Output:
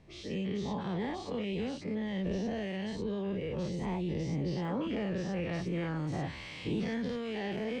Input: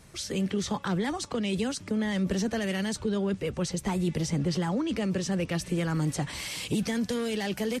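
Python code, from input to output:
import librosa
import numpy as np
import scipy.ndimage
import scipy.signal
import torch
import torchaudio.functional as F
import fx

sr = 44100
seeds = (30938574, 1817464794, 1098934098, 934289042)

y = fx.spec_dilate(x, sr, span_ms=120)
y = scipy.signal.sosfilt(scipy.signal.butter(2, 2700.0, 'lowpass', fs=sr, output='sos'), y)
y = fx.peak_eq(y, sr, hz=1400.0, db=fx.steps((0.0, -13.0), (4.65, -4.0)), octaves=0.58)
y = y * 10.0 ** (-9.0 / 20.0)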